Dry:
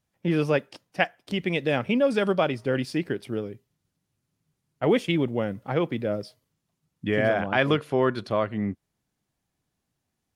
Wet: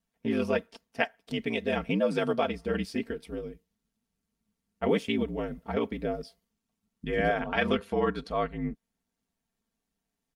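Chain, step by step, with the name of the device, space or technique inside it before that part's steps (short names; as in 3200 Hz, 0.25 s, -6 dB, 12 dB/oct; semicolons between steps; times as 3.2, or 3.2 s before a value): ring-modulated robot voice (ring modulator 55 Hz; comb 4.4 ms, depth 66%); gain -3 dB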